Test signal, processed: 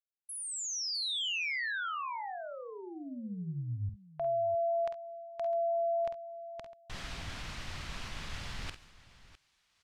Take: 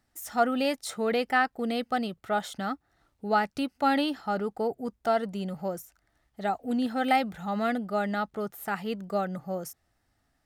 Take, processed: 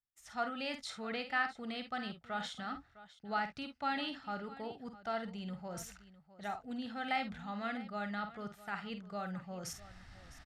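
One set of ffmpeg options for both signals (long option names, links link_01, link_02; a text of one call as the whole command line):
ffmpeg -i in.wav -af "lowpass=4400,areverse,acompressor=mode=upward:threshold=-26dB:ratio=2.5,areverse,equalizer=frequency=410:width_type=o:width=2.3:gain=-12,agate=range=-33dB:threshold=-51dB:ratio=3:detection=peak,aecho=1:1:49|67|656:0.376|0.126|0.141,volume=-5.5dB" out.wav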